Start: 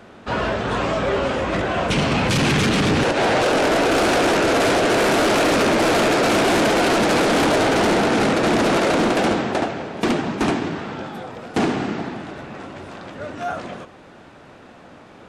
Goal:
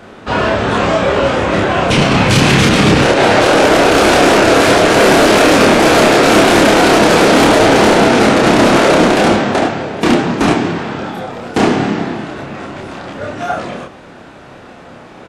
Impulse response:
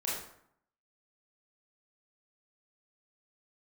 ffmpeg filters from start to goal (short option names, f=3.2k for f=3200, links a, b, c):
-filter_complex "[0:a]asplit=2[a][b];[b]adelay=29,volume=-2dB[c];[a][c]amix=inputs=2:normalize=0,volume=6.5dB"